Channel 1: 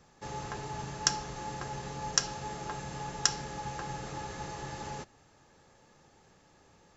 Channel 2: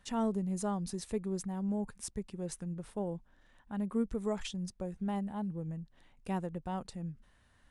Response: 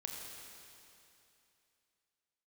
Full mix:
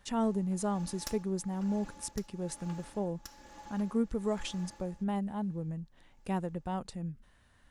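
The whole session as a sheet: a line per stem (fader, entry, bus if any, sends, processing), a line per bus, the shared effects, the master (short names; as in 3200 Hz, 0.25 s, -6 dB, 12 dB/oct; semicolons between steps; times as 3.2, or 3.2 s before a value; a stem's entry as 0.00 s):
-10.0 dB, 0.00 s, no send, minimum comb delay 3.5 ms; tremolo 1.1 Hz, depth 77%
+2.0 dB, 0.00 s, no send, dry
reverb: off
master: dry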